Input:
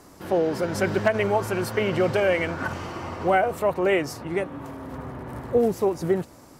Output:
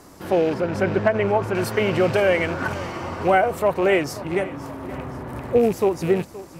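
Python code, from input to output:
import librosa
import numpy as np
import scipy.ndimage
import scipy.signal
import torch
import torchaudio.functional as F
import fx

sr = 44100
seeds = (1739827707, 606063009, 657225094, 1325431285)

y = fx.rattle_buzz(x, sr, strikes_db=-29.0, level_db=-30.0)
y = fx.lowpass(y, sr, hz=1800.0, slope=6, at=(0.54, 1.55))
y = fx.echo_feedback(y, sr, ms=522, feedback_pct=49, wet_db=-17.5)
y = y * 10.0 ** (3.0 / 20.0)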